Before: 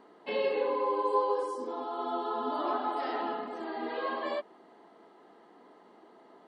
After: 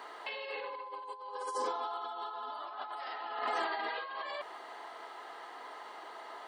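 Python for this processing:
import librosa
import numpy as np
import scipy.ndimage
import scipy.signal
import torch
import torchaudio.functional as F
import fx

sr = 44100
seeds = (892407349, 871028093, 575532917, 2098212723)

y = scipy.signal.sosfilt(scipy.signal.butter(2, 1000.0, 'highpass', fs=sr, output='sos'), x)
y = fx.over_compress(y, sr, threshold_db=-48.0, ratio=-1.0)
y = F.gain(torch.from_numpy(y), 8.0).numpy()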